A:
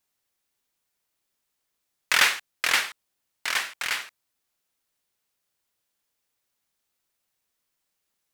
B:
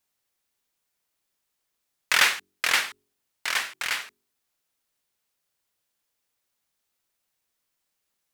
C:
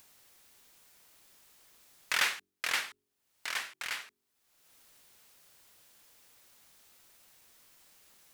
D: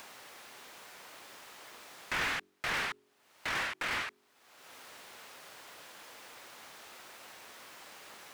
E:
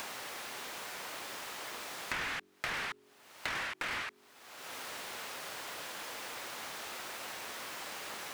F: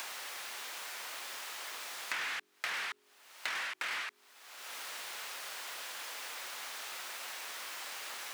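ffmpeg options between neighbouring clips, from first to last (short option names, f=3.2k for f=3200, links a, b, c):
-af "bandreject=f=46.52:t=h:w=4,bandreject=f=93.04:t=h:w=4,bandreject=f=139.56:t=h:w=4,bandreject=f=186.08:t=h:w=4,bandreject=f=232.6:t=h:w=4,bandreject=f=279.12:t=h:w=4,bandreject=f=325.64:t=h:w=4,bandreject=f=372.16:t=h:w=4,bandreject=f=418.68:t=h:w=4"
-af "acompressor=mode=upward:threshold=-31dB:ratio=2.5,volume=-9dB"
-filter_complex "[0:a]asplit=2[a][b];[b]highpass=f=720:p=1,volume=35dB,asoftclip=type=tanh:threshold=-14dB[c];[a][c]amix=inputs=2:normalize=0,lowpass=f=1.1k:p=1,volume=-6dB,volume=-5.5dB"
-af "acompressor=threshold=-44dB:ratio=6,volume=8.5dB"
-af "highpass=f=1.2k:p=1,volume=1.5dB"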